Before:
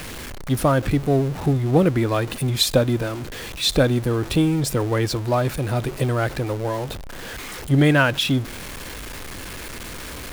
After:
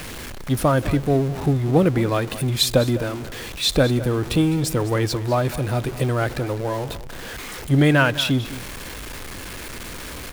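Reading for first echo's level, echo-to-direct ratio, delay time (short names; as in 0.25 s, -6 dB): -15.5 dB, -15.5 dB, 0.206 s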